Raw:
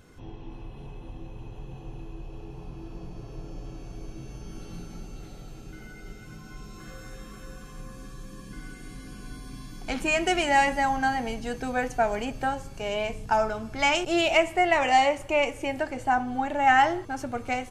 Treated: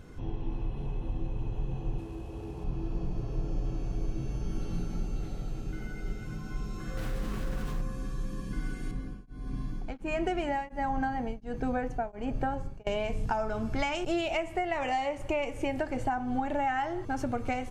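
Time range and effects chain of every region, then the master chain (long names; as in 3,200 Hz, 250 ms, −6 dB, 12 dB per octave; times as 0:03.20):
0:01.98–0:02.64: variable-slope delta modulation 64 kbit/s + high-pass filter 52 Hz 24 dB per octave + parametric band 140 Hz −9 dB 0.39 octaves
0:06.97–0:07.82: phase distortion by the signal itself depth 0.47 ms + envelope flattener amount 70%
0:08.91–0:12.87: high-shelf EQ 2,400 Hz −11 dB + tremolo along a rectified sine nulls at 1.4 Hz
whole clip: downward compressor 6 to 1, threshold −30 dBFS; spectral tilt −1.5 dB per octave; level +1.5 dB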